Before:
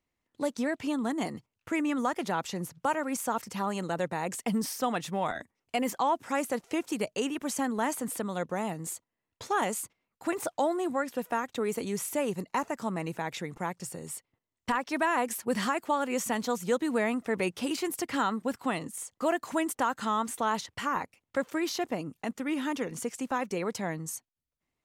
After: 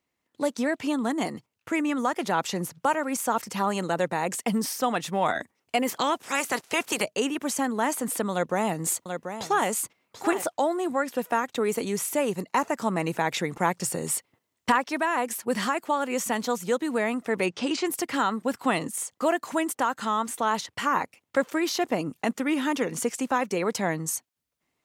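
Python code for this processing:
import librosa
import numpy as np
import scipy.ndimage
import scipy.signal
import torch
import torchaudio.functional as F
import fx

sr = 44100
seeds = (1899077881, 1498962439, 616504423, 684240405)

y = fx.spec_clip(x, sr, under_db=18, at=(5.87, 7.02), fade=0.02)
y = fx.echo_single(y, sr, ms=736, db=-12.0, at=(8.32, 10.42))
y = fx.lowpass(y, sr, hz=7000.0, slope=24, at=(17.46, 17.87))
y = fx.highpass(y, sr, hz=170.0, slope=6)
y = fx.rider(y, sr, range_db=10, speed_s=0.5)
y = y * 10.0 ** (5.0 / 20.0)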